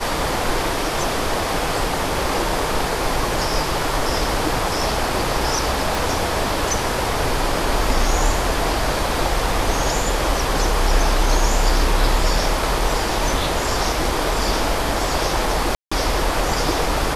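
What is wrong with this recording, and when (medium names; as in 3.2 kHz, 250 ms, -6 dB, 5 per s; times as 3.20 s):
5.95 s: pop
15.75–15.91 s: dropout 165 ms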